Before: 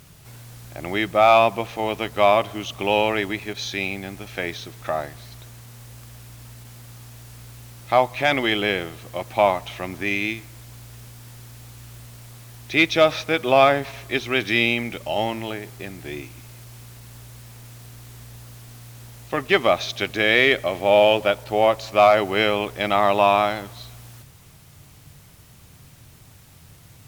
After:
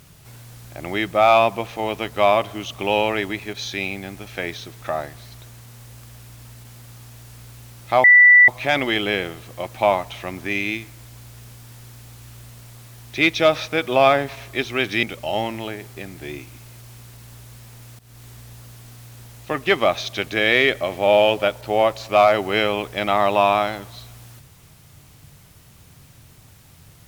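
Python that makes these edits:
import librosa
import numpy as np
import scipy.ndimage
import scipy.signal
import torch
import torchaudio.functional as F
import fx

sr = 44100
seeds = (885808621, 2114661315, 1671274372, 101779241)

y = fx.edit(x, sr, fx.insert_tone(at_s=8.04, length_s=0.44, hz=1970.0, db=-6.5),
    fx.cut(start_s=14.59, length_s=0.27),
    fx.fade_in_from(start_s=17.82, length_s=0.31, curve='qsin', floor_db=-17.5), tone=tone)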